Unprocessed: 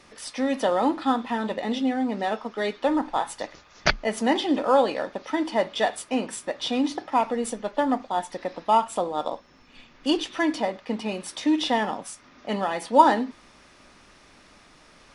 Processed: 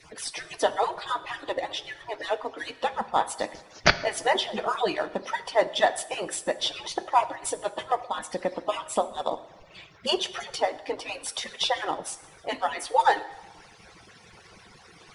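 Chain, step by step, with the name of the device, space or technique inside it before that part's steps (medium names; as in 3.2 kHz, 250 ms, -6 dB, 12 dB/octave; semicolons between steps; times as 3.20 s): harmonic-percussive separation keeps percussive; plate-style reverb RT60 0.95 s, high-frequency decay 0.9×, DRR 13 dB; parallel compression (in parallel at -4.5 dB: compression, threshold -45 dBFS, peak gain reduction 27 dB); on the sum: trim +2 dB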